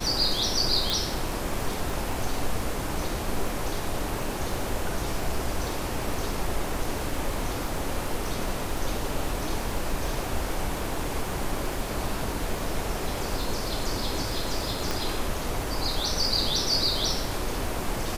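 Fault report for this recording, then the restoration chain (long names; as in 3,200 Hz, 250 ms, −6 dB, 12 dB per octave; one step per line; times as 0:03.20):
surface crackle 44 per second −31 dBFS
0:00.90: click
0:14.91: click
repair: click removal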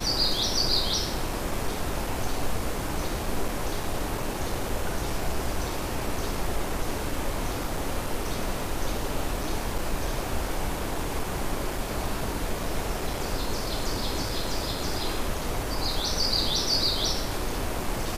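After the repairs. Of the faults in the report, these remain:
none of them is left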